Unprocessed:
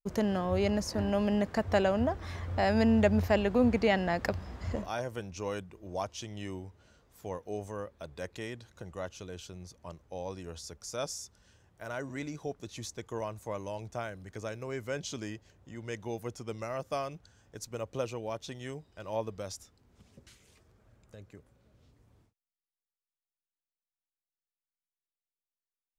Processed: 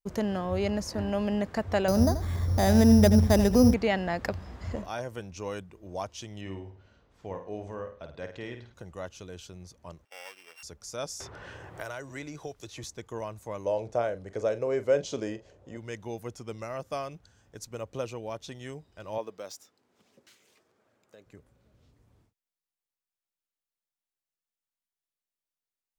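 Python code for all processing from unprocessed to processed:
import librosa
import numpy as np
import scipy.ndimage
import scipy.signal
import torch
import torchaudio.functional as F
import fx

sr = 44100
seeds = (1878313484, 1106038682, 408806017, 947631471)

y = fx.chain(x, sr, fx.low_shelf(hz=320.0, db=11.0),
    fx.echo_single(ms=83, db=-12.0),
    fx.resample_bad(factor=8, down='filtered', up='hold'), at=(1.88, 3.74))
y = fx.chain(y, sr, fx.lowpass(hz=3700.0, slope=12),
    fx.room_flutter(wall_m=8.8, rt60_s=0.41), at=(6.41, 8.74))
y = fx.chain(y, sr, fx.sample_sort(block=16),
    fx.highpass(hz=960.0, slope=12),
    fx.high_shelf(hz=5000.0, db=-7.5), at=(10.05, 10.63))
y = fx.chain(y, sr, fx.peak_eq(hz=210.0, db=-14.0, octaves=0.52),
    fx.band_squash(depth_pct=100), at=(11.2, 12.84))
y = fx.chain(y, sr, fx.lowpass(hz=8800.0, slope=12),
    fx.peak_eq(hz=520.0, db=14.0, octaves=1.1),
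    fx.doubler(ms=42.0, db=-13.5), at=(13.65, 15.77))
y = fx.chain(y, sr, fx.highpass(hz=300.0, slope=12),
    fx.resample_linear(factor=2), at=(19.18, 21.26))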